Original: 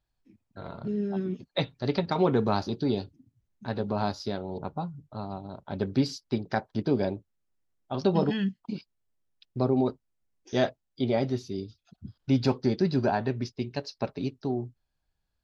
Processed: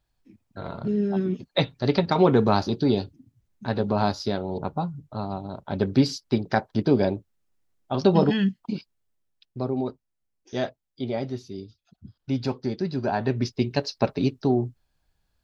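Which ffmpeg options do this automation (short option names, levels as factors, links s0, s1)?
-af "volume=6.31,afade=t=out:st=8.61:d=0.98:silence=0.398107,afade=t=in:st=13.02:d=0.52:silence=0.298538"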